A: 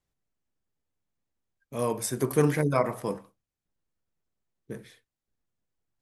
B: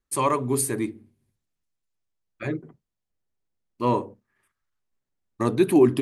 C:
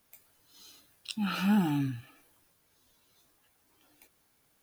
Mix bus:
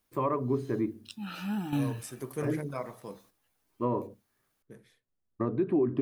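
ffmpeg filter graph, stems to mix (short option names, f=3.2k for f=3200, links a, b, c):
-filter_complex "[0:a]volume=-12dB,asplit=2[a][b];[1:a]lowpass=1.2k,equalizer=f=850:w=7.1:g=-8.5,volume=-2.5dB[c];[2:a]volume=1.5dB[d];[b]apad=whole_len=203934[e];[d][e]sidechaingate=range=-9dB:threshold=-60dB:ratio=16:detection=peak[f];[a][c][f]amix=inputs=3:normalize=0,alimiter=limit=-19dB:level=0:latency=1:release=179"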